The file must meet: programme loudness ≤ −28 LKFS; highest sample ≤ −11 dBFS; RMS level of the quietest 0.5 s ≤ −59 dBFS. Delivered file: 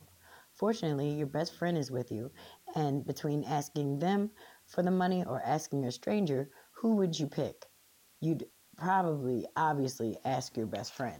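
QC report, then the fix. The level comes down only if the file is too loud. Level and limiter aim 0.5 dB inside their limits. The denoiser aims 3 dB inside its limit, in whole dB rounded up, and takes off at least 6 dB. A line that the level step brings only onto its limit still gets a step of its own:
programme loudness −33.5 LKFS: in spec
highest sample −17.5 dBFS: in spec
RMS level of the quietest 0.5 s −65 dBFS: in spec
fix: no processing needed

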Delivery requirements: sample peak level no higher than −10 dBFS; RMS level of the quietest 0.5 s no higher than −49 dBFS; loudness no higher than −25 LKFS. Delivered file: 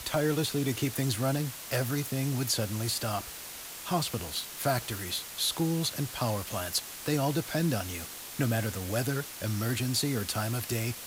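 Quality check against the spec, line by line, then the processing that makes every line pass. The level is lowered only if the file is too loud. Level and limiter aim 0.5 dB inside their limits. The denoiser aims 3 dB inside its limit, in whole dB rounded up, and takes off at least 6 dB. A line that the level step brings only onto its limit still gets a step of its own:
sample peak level −15.5 dBFS: in spec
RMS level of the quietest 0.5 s −43 dBFS: out of spec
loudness −31.0 LKFS: in spec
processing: broadband denoise 9 dB, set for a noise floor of −43 dBFS

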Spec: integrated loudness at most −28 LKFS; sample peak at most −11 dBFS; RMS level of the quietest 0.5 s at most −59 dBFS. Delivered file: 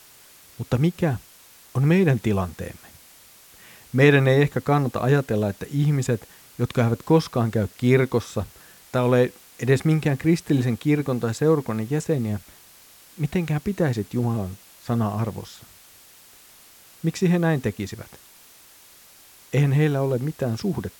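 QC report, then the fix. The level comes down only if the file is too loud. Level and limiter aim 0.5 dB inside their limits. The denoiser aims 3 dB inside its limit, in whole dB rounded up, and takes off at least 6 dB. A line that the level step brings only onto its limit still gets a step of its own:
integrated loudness −23.0 LKFS: out of spec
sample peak −4.5 dBFS: out of spec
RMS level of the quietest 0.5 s −50 dBFS: out of spec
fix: broadband denoise 7 dB, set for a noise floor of −50 dBFS
level −5.5 dB
brickwall limiter −11.5 dBFS

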